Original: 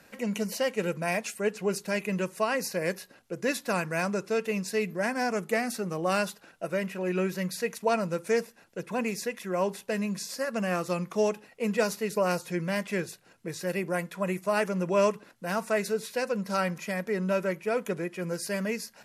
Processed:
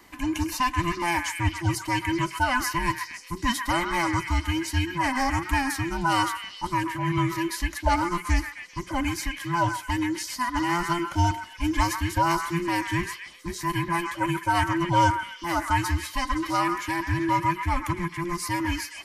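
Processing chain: every band turned upside down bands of 500 Hz; repeats whose band climbs or falls 130 ms, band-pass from 1.5 kHz, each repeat 0.7 oct, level -3 dB; trim +3.5 dB

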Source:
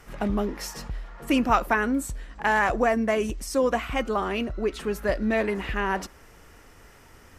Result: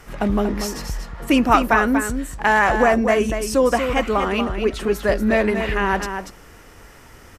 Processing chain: delay 238 ms -7.5 dB; trim +6 dB

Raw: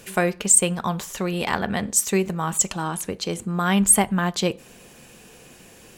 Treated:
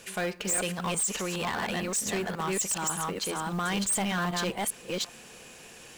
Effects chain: chunks repeated in reverse 392 ms, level -1 dB; low-pass 10 kHz 12 dB/octave; bass shelf 450 Hz -9 dB; in parallel at +2.5 dB: peak limiter -15 dBFS, peak gain reduction 11 dB; on the sum: saturation -17 dBFS, distortion -8 dB; companded quantiser 6-bit; trim -8 dB

